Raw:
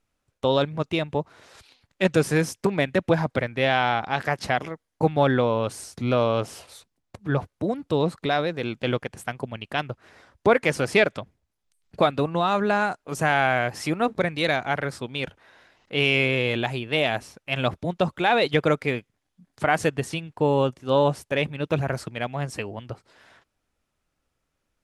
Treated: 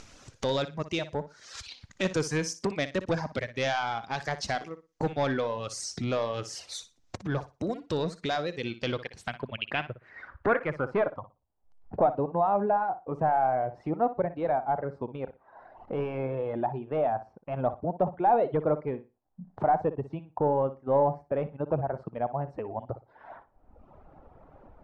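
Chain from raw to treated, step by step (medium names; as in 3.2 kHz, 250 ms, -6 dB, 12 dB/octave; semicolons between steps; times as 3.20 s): reverb removal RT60 0.93 s; upward compressor, threshold -23 dBFS; saturation -14.5 dBFS, distortion -15 dB; flutter echo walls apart 10.2 m, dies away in 0.26 s; low-pass sweep 6.2 kHz -> 810 Hz, 8.50–11.36 s; trim -5 dB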